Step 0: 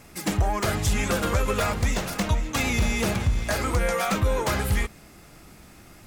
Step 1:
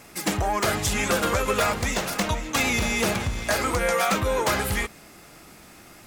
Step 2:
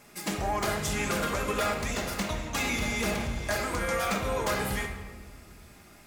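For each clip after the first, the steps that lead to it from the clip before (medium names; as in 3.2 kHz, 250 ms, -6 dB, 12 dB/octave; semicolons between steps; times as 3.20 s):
bass shelf 160 Hz -11.5 dB; trim +3.5 dB
reverberation RT60 1.4 s, pre-delay 5 ms, DRR 2.5 dB; trim -8 dB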